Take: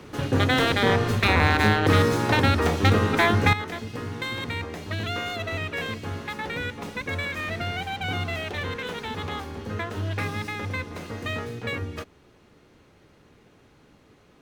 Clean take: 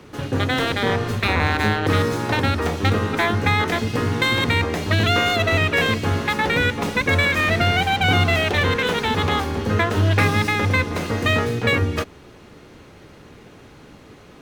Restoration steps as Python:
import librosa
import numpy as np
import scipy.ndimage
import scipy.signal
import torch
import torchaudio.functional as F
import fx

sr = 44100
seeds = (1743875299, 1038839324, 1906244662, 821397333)

y = fx.fix_declip(x, sr, threshold_db=-8.5)
y = fx.fix_level(y, sr, at_s=3.53, step_db=11.5)